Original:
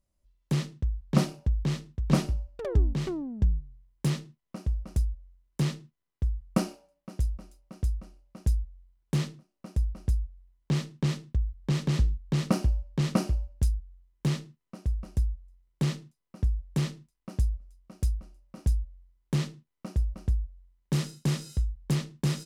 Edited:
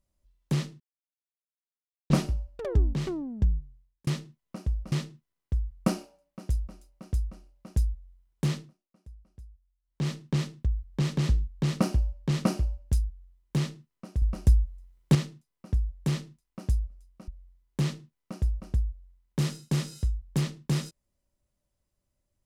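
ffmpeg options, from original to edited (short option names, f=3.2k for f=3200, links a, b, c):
-filter_complex "[0:a]asplit=10[a][b][c][d][e][f][g][h][i][j];[a]atrim=end=0.8,asetpts=PTS-STARTPTS,afade=t=out:st=0.796:d=0.004:c=hsin[k];[b]atrim=start=0.8:end=2.1,asetpts=PTS-STARTPTS,volume=0[l];[c]atrim=start=2.1:end=4.07,asetpts=PTS-STARTPTS,afade=t=in:d=0.004:c=hsin,afade=t=out:st=1.48:d=0.49[m];[d]atrim=start=4.07:end=4.922,asetpts=PTS-STARTPTS,afade=t=in:d=0.004:c=hsin[n];[e]atrim=start=5.618:end=9.6,asetpts=PTS-STARTPTS,afade=t=out:st=3.682:d=0.3:silence=0.0891251[o];[f]atrim=start=9.6:end=10.52,asetpts=PTS-STARTPTS,volume=-21dB[p];[g]atrim=start=10.52:end=14.922,asetpts=PTS-STARTPTS,afade=t=in:d=0.3:silence=0.0891251[q];[h]atrim=start=14.918:end=15.852,asetpts=PTS-STARTPTS,volume=7dB[r];[i]atrim=start=15.848:end=17.982[s];[j]atrim=start=18.818[t];[k][l][m][n]concat=n=4:v=0:a=1[u];[o][p][q]concat=n=3:v=0:a=1[v];[u][v]acrossfade=d=0.004:c1=hsin:c2=hsin[w];[w][r]acrossfade=d=0.004:c1=hsin:c2=hsin[x];[x][s]acrossfade=d=0.004:c1=hsin:c2=hsin[y];[y][t]acrossfade=d=0.004:c1=hsin:c2=hsin"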